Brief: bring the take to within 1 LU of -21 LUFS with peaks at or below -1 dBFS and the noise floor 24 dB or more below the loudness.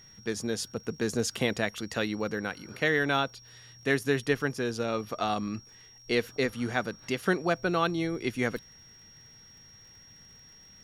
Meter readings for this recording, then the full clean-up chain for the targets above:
ticks 45/s; steady tone 5600 Hz; tone level -52 dBFS; loudness -30.0 LUFS; peak -11.5 dBFS; loudness target -21.0 LUFS
-> de-click; notch 5600 Hz, Q 30; gain +9 dB

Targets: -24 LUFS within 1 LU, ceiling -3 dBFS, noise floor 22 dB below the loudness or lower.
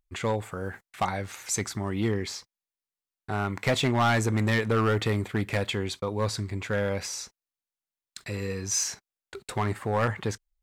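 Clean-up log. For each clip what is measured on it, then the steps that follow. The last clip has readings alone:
clipped 0.9%; flat tops at -18.5 dBFS; loudness -28.5 LUFS; peak -18.5 dBFS; loudness target -24.0 LUFS
-> clip repair -18.5 dBFS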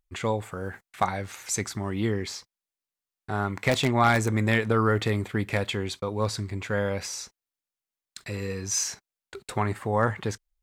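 clipped 0.0%; loudness -27.5 LUFS; peak -9.5 dBFS; loudness target -24.0 LUFS
-> gain +3.5 dB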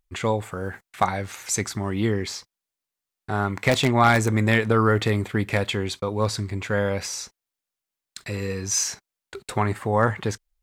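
loudness -24.0 LUFS; peak -6.0 dBFS; noise floor -87 dBFS

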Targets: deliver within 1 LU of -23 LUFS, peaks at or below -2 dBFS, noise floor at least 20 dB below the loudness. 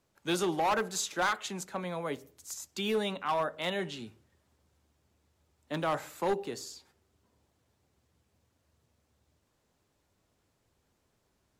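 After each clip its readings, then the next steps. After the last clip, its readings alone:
clipped 0.8%; flat tops at -24.0 dBFS; loudness -33.0 LUFS; peak -24.0 dBFS; loudness target -23.0 LUFS
-> clip repair -24 dBFS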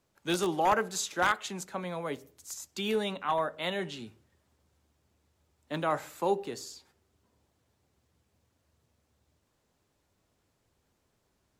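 clipped 0.0%; loudness -32.0 LUFS; peak -15.0 dBFS; loudness target -23.0 LUFS
-> gain +9 dB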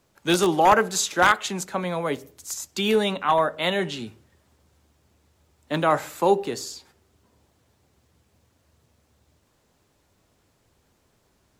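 loudness -23.0 LUFS; peak -6.0 dBFS; noise floor -67 dBFS

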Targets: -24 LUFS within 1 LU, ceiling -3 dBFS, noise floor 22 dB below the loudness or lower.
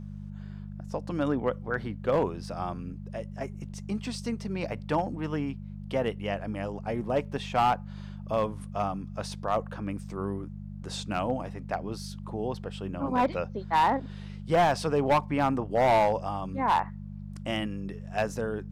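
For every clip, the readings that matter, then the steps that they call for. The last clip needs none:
clipped 0.7%; flat tops at -17.5 dBFS; hum 50 Hz; harmonics up to 200 Hz; hum level -37 dBFS; loudness -30.0 LUFS; peak -17.5 dBFS; loudness target -24.0 LUFS
-> clip repair -17.5 dBFS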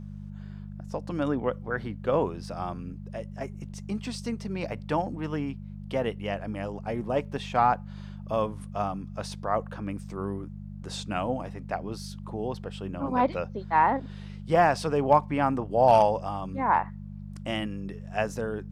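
clipped 0.0%; hum 50 Hz; harmonics up to 200 Hz; hum level -37 dBFS
-> de-hum 50 Hz, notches 4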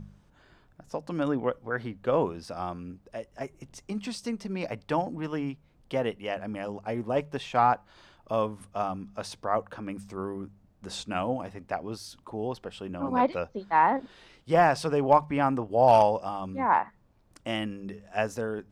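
hum none; loudness -28.5 LUFS; peak -8.0 dBFS; loudness target -24.0 LUFS
-> gain +4.5 dB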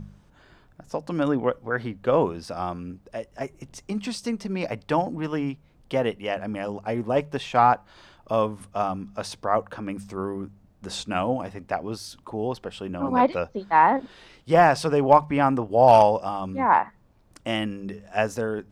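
loudness -24.0 LUFS; peak -3.5 dBFS; noise floor -58 dBFS

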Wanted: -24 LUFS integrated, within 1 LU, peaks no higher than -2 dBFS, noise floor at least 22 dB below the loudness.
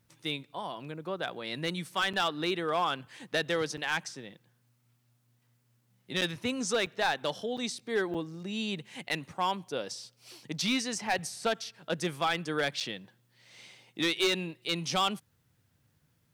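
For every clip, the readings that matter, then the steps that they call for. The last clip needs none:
clipped 0.7%; flat tops at -21.5 dBFS; dropouts 7; longest dropout 6.2 ms; loudness -32.0 LUFS; peak -21.5 dBFS; loudness target -24.0 LUFS
-> clip repair -21.5 dBFS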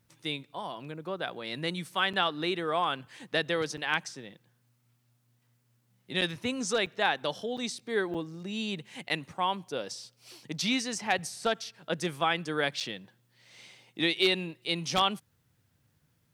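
clipped 0.0%; dropouts 7; longest dropout 6.2 ms
-> interpolate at 2.13/3.77/6.21/6.86/7.57/8.14/12.8, 6.2 ms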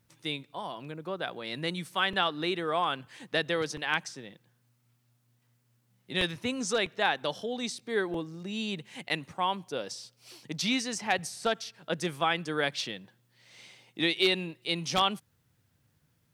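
dropouts 0; loudness -31.0 LUFS; peak -12.5 dBFS; loudness target -24.0 LUFS
-> gain +7 dB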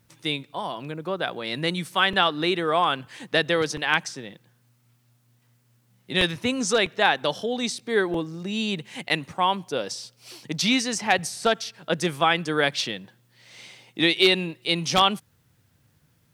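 loudness -24.0 LUFS; peak -5.5 dBFS; noise floor -64 dBFS

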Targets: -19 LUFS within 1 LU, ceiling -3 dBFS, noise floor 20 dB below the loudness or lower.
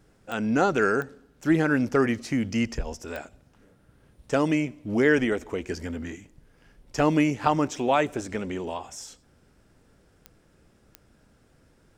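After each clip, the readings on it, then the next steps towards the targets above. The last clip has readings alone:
clicks 5; loudness -25.5 LUFS; peak -7.5 dBFS; loudness target -19.0 LUFS
-> de-click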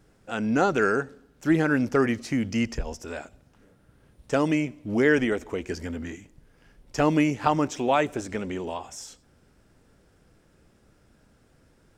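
clicks 0; loudness -25.5 LUFS; peak -7.5 dBFS; loudness target -19.0 LUFS
-> gain +6.5 dB; limiter -3 dBFS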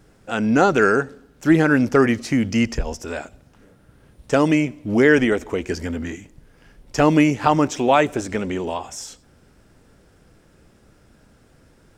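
loudness -19.5 LUFS; peak -3.0 dBFS; noise floor -55 dBFS

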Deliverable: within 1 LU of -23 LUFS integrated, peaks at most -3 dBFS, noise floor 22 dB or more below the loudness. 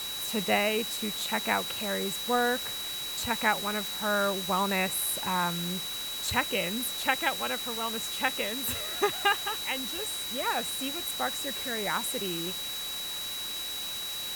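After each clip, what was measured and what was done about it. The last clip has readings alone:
steady tone 3900 Hz; tone level -35 dBFS; noise floor -36 dBFS; noise floor target -51 dBFS; loudness -29.0 LUFS; peak -9.5 dBFS; loudness target -23.0 LUFS
-> notch 3900 Hz, Q 30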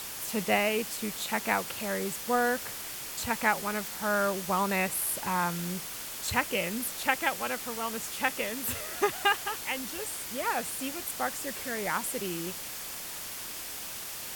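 steady tone none; noise floor -40 dBFS; noise floor target -53 dBFS
-> denoiser 13 dB, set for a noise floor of -40 dBFS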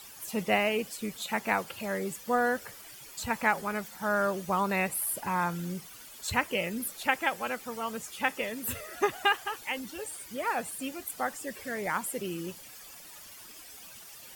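noise floor -49 dBFS; noise floor target -54 dBFS
-> denoiser 6 dB, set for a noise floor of -49 dBFS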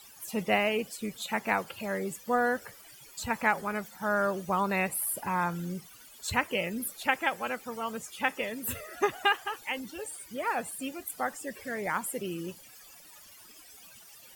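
noise floor -53 dBFS; noise floor target -54 dBFS
-> denoiser 6 dB, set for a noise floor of -53 dBFS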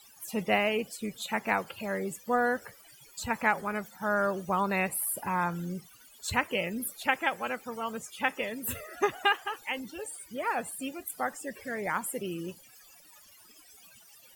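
noise floor -56 dBFS; loudness -31.5 LUFS; peak -9.5 dBFS; loudness target -23.0 LUFS
-> gain +8.5 dB; limiter -3 dBFS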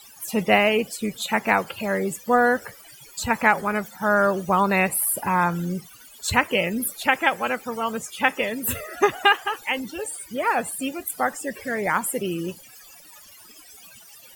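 loudness -23.0 LUFS; peak -3.0 dBFS; noise floor -48 dBFS

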